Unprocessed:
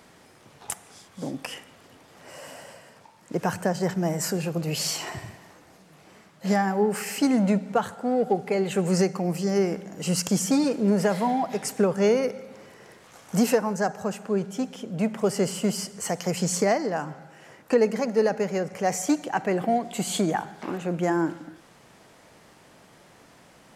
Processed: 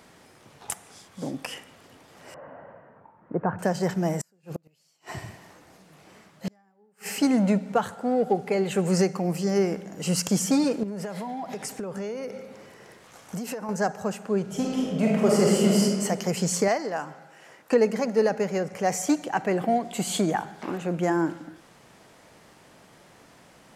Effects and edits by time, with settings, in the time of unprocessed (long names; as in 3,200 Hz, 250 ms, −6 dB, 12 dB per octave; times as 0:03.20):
0:02.34–0:03.59: low-pass filter 1,500 Hz 24 dB per octave
0:04.20–0:07.18: gate with flip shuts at −20 dBFS, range −39 dB
0:10.83–0:13.69: downward compressor 12 to 1, threshold −29 dBFS
0:14.42–0:15.83: thrown reverb, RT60 1.7 s, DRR −3.5 dB
0:16.68–0:17.72: low-shelf EQ 270 Hz −11 dB